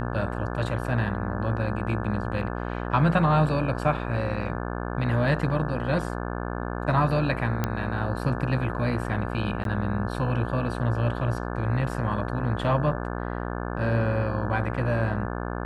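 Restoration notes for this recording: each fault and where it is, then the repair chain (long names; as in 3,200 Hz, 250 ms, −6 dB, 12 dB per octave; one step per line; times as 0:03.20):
mains buzz 60 Hz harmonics 29 −31 dBFS
0:07.64: click −11 dBFS
0:09.64–0:09.65: drop-out 12 ms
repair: click removal
hum removal 60 Hz, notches 29
repair the gap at 0:09.64, 12 ms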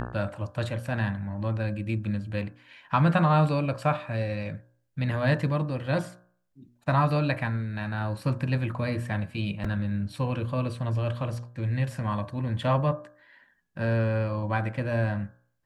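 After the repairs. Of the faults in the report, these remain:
none of them is left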